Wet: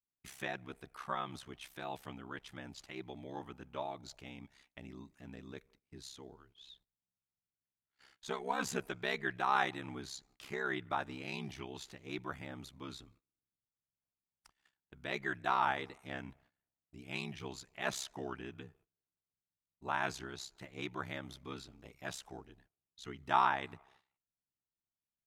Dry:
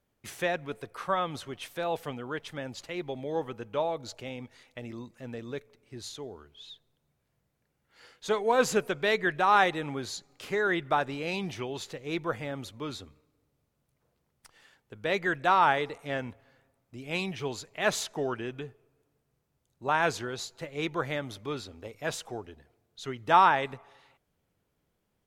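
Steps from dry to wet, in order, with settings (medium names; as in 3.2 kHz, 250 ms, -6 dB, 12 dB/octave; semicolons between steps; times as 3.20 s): gate -57 dBFS, range -18 dB; peaking EQ 500 Hz -13.5 dB 0.33 oct; ring modulator 33 Hz; trim -5.5 dB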